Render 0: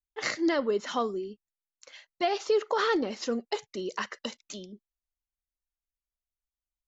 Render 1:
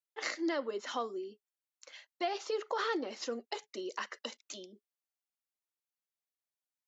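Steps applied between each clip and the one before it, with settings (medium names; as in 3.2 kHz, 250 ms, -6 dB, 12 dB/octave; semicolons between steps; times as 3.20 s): high-pass 270 Hz 24 dB/octave; band-stop 420 Hz, Q 12; in parallel at 0 dB: compression, threshold -37 dBFS, peak gain reduction 14 dB; on the sum: trim -8.5 dB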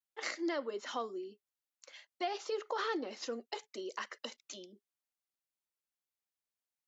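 vibrato 0.58 Hz 27 cents; trim -2 dB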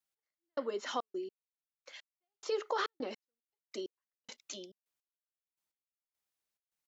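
trance gate "x...xxx.x...." 105 bpm -60 dB; trim +3 dB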